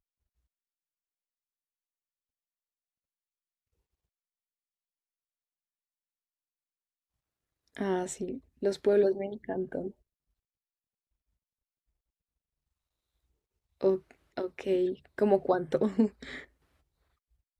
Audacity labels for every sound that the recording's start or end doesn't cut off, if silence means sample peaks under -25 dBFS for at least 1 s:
7.810000	9.780000	sound
13.840000	16.060000	sound